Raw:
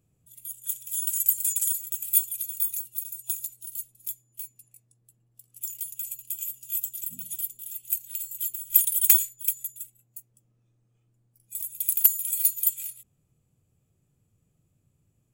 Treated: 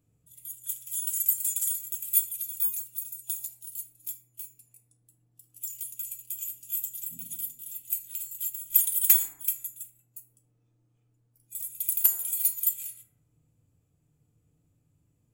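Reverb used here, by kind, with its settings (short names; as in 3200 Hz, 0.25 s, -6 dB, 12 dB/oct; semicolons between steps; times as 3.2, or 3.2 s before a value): FDN reverb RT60 1 s, low-frequency decay 1.2×, high-frequency decay 0.3×, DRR 1.5 dB; gain -3.5 dB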